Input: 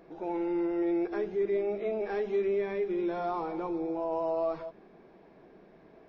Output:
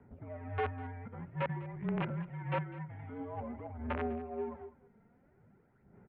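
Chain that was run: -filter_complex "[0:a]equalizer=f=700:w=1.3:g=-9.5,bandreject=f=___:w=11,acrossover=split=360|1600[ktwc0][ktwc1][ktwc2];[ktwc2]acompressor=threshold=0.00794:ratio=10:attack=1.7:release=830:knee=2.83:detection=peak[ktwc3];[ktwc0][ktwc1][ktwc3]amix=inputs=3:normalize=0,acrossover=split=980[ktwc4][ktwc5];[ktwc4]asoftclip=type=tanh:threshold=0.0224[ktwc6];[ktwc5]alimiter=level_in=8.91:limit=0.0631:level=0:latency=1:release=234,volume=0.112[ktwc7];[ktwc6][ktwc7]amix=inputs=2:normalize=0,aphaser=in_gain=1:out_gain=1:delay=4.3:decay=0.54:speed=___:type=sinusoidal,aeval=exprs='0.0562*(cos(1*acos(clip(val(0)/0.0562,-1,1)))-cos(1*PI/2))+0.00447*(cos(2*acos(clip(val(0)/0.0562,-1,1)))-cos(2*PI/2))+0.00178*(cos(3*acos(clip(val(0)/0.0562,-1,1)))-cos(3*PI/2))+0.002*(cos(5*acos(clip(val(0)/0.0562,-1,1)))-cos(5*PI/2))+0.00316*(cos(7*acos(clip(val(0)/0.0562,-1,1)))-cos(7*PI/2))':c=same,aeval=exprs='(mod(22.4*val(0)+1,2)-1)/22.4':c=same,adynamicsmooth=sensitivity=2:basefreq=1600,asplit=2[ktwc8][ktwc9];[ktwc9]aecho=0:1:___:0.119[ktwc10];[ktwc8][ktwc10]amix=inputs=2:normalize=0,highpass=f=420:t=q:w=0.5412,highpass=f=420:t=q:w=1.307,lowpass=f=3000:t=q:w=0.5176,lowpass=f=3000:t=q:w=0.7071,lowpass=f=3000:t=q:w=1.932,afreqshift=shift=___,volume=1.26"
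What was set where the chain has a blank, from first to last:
1400, 0.5, 201, -250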